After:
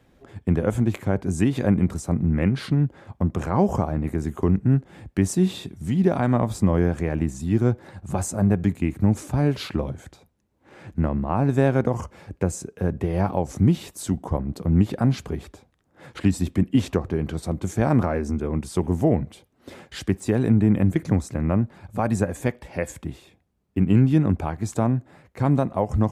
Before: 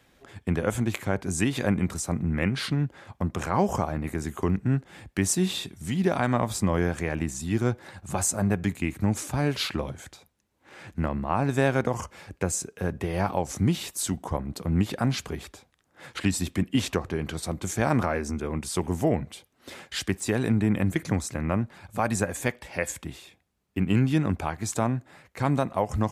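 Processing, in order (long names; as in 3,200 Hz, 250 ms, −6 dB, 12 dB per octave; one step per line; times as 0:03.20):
tilt shelving filter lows +6 dB, about 930 Hz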